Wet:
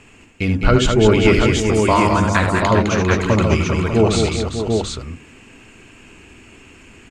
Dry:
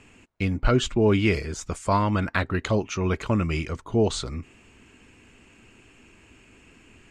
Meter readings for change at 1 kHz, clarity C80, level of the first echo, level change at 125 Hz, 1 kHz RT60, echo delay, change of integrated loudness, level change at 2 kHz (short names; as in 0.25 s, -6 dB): +10.0 dB, none, -7.5 dB, +8.5 dB, none, 74 ms, +8.5 dB, +9.5 dB